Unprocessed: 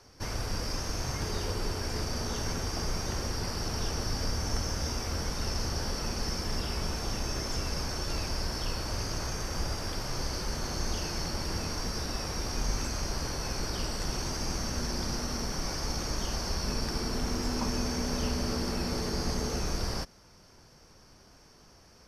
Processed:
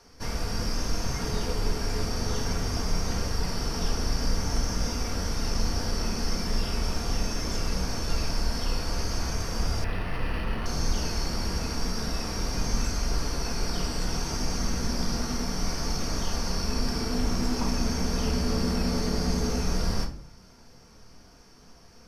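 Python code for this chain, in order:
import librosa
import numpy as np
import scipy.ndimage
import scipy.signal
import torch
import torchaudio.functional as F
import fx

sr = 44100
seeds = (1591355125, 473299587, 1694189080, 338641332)

y = fx.room_shoebox(x, sr, seeds[0], volume_m3=450.0, walls='furnished', distance_m=1.7)
y = fx.resample_linear(y, sr, factor=6, at=(9.84, 10.66))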